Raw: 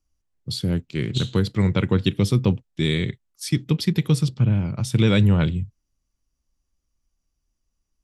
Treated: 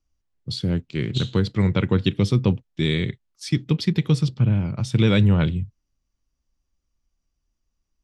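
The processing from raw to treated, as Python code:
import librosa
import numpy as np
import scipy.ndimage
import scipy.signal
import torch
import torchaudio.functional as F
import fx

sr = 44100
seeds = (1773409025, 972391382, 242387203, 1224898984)

y = scipy.signal.sosfilt(scipy.signal.butter(2, 6200.0, 'lowpass', fs=sr, output='sos'), x)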